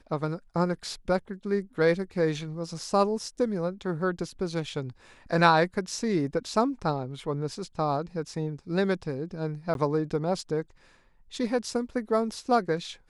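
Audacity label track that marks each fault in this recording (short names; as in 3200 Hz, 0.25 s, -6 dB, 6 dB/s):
9.740000	9.750000	gap 12 ms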